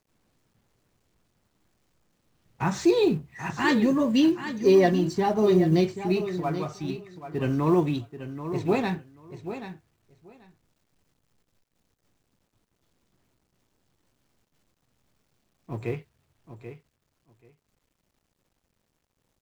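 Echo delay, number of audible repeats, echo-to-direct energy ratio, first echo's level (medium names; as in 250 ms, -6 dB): 784 ms, 2, -11.0 dB, -11.0 dB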